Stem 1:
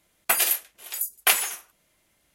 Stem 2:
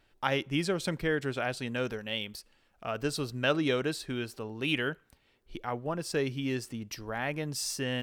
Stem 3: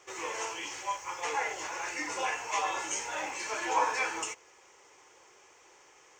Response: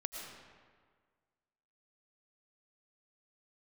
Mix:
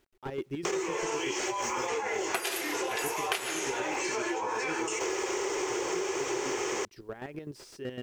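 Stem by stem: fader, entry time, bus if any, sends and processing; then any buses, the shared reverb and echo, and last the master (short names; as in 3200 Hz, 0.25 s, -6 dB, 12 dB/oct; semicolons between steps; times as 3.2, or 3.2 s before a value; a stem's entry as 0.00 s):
+2.5 dB, 2.05 s, send -0.5 dB, LPF 7000 Hz 12 dB/oct
-6.0 dB, 0.00 s, no send, high shelf 10000 Hz -4.5 dB; chopper 7.9 Hz, depth 65%, duty 35%; slew limiter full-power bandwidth 34 Hz
-4.5 dB, 0.65 s, no send, fast leveller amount 100%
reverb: on, RT60 1.7 s, pre-delay 70 ms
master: bell 380 Hz +14.5 dB 0.52 oct; requantised 12-bit, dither none; compressor 16:1, threshold -28 dBFS, peak gain reduction 20.5 dB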